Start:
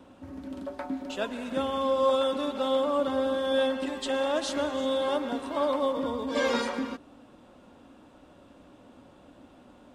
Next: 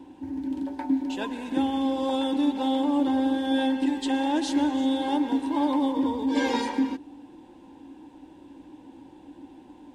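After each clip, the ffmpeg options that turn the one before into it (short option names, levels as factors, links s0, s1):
-af "superequalizer=6b=3.55:8b=0.447:9b=2:10b=0.282"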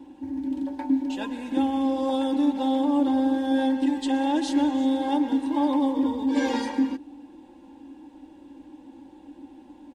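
-af "aecho=1:1:3.6:0.53,volume=0.794"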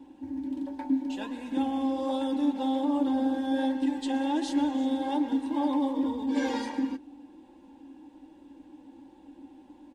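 -af "flanger=delay=4.4:depth=6.1:regen=-68:speed=1.3:shape=sinusoidal"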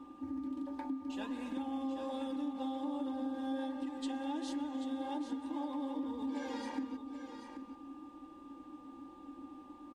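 -af "acompressor=threshold=0.0178:ratio=6,aecho=1:1:785:0.335,aeval=exprs='val(0)+0.00178*sin(2*PI*1200*n/s)':c=same,volume=0.794"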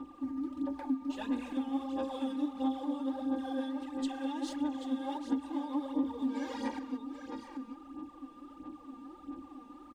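-af "aphaser=in_gain=1:out_gain=1:delay=4.4:decay=0.61:speed=1.5:type=sinusoidal"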